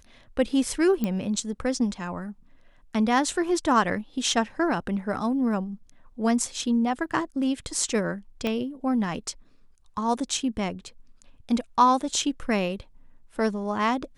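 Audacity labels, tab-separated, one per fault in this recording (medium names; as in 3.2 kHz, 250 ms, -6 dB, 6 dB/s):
1.040000	1.040000	pop -14 dBFS
8.470000	8.470000	pop -15 dBFS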